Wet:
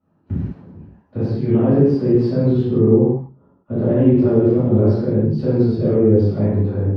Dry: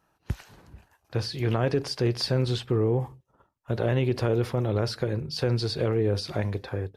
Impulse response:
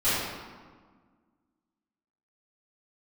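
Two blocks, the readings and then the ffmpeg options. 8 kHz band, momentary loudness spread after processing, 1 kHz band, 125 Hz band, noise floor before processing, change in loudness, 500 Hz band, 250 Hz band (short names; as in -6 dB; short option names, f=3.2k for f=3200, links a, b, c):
under -15 dB, 12 LU, +1.5 dB, +9.0 dB, -71 dBFS, +11.0 dB, +10.0 dB, +15.0 dB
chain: -filter_complex "[0:a]bandpass=f=220:t=q:w=1.4:csg=0[a];[1:a]atrim=start_sample=2205,afade=t=out:st=0.26:d=0.01,atrim=end_sample=11907[b];[a][b]afir=irnorm=-1:irlink=0,volume=2.5dB"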